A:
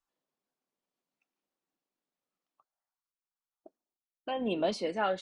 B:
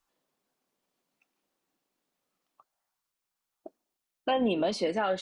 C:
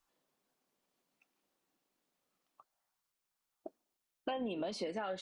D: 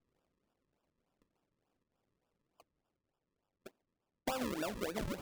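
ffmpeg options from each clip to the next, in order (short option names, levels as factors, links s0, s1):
-af "alimiter=level_in=1.41:limit=0.0631:level=0:latency=1:release=245,volume=0.708,volume=2.82"
-af "acompressor=threshold=0.02:ratio=6,volume=0.841"
-af "acrusher=samples=41:mix=1:aa=0.000001:lfo=1:lforange=41:lforate=3.4"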